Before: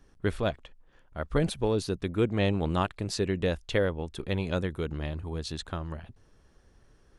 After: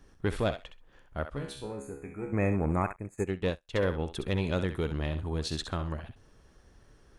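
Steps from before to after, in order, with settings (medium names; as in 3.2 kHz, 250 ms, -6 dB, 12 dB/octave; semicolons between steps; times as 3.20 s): single-diode clipper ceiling -18.5 dBFS; 1.57–3.27 s: time-frequency box 2.6–6.3 kHz -29 dB; in parallel at +2.5 dB: peak limiter -22.5 dBFS, peak gain reduction 9.5 dB; 1.25–2.33 s: on the sum: feedback comb 69 Hz, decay 0.49 s, harmonics all, mix 90%; thinning echo 65 ms, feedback 16%, high-pass 660 Hz, level -8 dB; 2.96–3.83 s: upward expansion 2.5:1, over -38 dBFS; trim -5 dB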